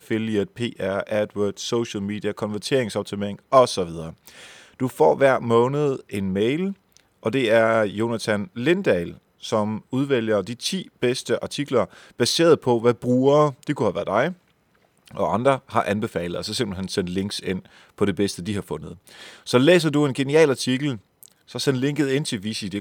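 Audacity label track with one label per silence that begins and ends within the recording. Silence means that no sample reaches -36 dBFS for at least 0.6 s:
14.330000	15.070000	silence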